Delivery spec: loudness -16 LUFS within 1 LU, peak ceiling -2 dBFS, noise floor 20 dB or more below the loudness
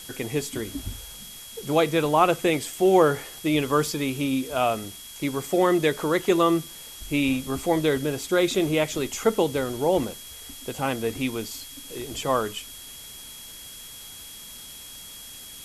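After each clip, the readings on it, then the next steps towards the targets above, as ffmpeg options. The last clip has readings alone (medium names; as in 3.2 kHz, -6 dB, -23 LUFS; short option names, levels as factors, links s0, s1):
steady tone 3.3 kHz; tone level -45 dBFS; noise floor -42 dBFS; noise floor target -45 dBFS; loudness -24.5 LUFS; peak level -6.0 dBFS; loudness target -16.0 LUFS
-> -af "bandreject=f=3300:w=30"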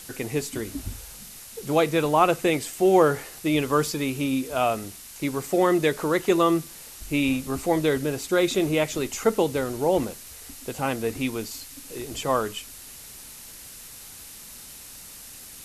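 steady tone not found; noise floor -43 dBFS; noise floor target -45 dBFS
-> -af "afftdn=nr=6:nf=-43"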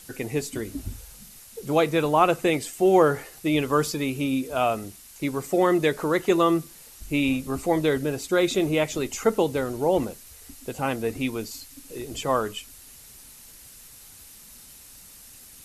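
noise floor -48 dBFS; loudness -24.5 LUFS; peak level -6.0 dBFS; loudness target -16.0 LUFS
-> -af "volume=2.66,alimiter=limit=0.794:level=0:latency=1"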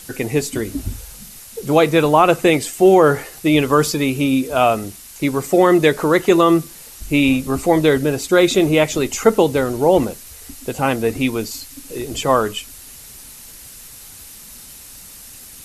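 loudness -16.5 LUFS; peak level -2.0 dBFS; noise floor -39 dBFS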